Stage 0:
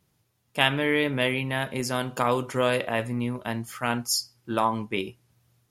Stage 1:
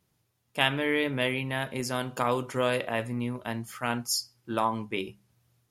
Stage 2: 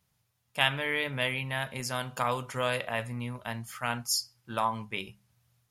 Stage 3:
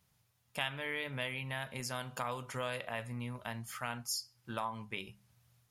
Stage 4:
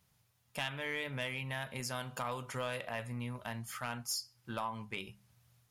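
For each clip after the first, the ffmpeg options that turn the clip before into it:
-af "bandreject=f=50:t=h:w=6,bandreject=f=100:t=h:w=6,bandreject=f=150:t=h:w=6,bandreject=f=200:t=h:w=6,volume=-3dB"
-af "equalizer=f=330:w=1.4:g=-12.5"
-af "acompressor=threshold=-43dB:ratio=2,volume=1dB"
-af "asoftclip=type=tanh:threshold=-27.5dB,volume=1dB"

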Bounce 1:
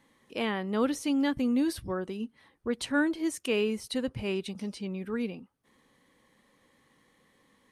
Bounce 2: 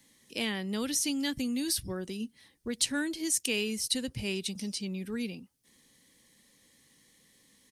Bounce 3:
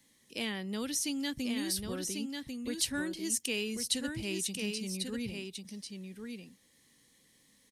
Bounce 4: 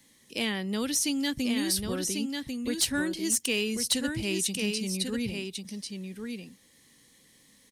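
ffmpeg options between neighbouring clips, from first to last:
-filter_complex "[0:a]firequalizer=gain_entry='entry(190,0);entry(470,-5);entry(1200,-10);entry(1800,-1);entry(5200,12)':delay=0.05:min_phase=1,acrossover=split=130|890[a][b][c];[b]acompressor=threshold=-31dB:ratio=6[d];[a][d][c]amix=inputs=3:normalize=0"
-af "aecho=1:1:1094:0.562,volume=-3.5dB"
-af "volume=24dB,asoftclip=hard,volume=-24dB,volume=6dB"

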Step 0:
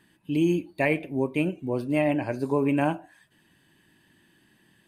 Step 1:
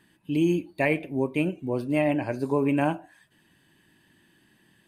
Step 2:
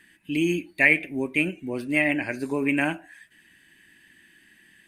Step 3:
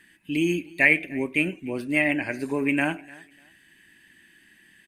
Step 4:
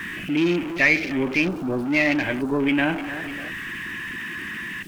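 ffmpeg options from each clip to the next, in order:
-af anull
-af "equalizer=f=125:t=o:w=1:g=-10,equalizer=f=500:t=o:w=1:g=-6,equalizer=f=1k:t=o:w=1:g=-9,equalizer=f=2k:t=o:w=1:g=12,equalizer=f=4k:t=o:w=1:g=-3,equalizer=f=8k:t=o:w=1:g=4,volume=3dB"
-af "aecho=1:1:298|596:0.0668|0.0174"
-af "aeval=exprs='val(0)+0.5*0.0531*sgn(val(0))':c=same,acontrast=85,afwtdn=0.0501,volume=-6dB"

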